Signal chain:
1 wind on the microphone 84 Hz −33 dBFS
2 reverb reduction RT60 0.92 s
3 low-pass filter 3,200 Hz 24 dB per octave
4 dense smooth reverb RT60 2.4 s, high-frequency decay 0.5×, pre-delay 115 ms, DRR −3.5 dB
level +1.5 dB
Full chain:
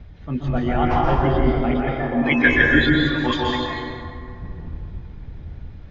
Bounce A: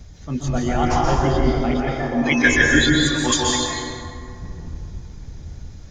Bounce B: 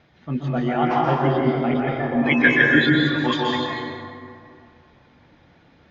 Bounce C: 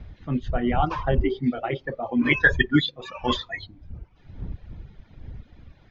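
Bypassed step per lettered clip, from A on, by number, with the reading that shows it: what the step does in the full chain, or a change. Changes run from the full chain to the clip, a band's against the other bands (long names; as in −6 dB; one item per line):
3, 4 kHz band +5.0 dB
1, 125 Hz band −2.0 dB
4, change in integrated loudness −5.0 LU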